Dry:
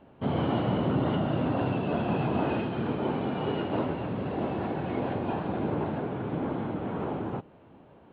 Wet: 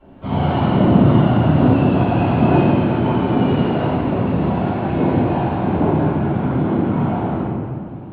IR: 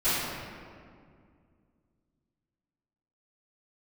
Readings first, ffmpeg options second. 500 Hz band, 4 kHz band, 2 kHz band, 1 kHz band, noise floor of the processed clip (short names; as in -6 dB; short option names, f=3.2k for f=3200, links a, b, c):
+10.5 dB, +8.5 dB, +10.0 dB, +11.5 dB, -32 dBFS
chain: -filter_complex "[0:a]aphaser=in_gain=1:out_gain=1:delay=1.5:decay=0.47:speed=1.2:type=triangular[a];[1:a]atrim=start_sample=2205[b];[a][b]afir=irnorm=-1:irlink=0,volume=-4.5dB"